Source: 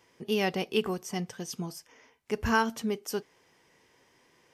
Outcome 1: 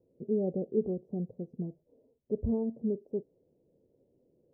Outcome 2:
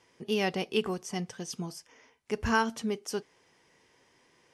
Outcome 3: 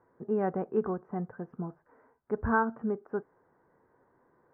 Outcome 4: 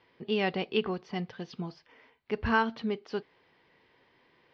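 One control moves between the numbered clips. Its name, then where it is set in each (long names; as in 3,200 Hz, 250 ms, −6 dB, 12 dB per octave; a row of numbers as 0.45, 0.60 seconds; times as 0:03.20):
elliptic low-pass filter, frequency: 570, 11,000, 1,500, 4,300 Hertz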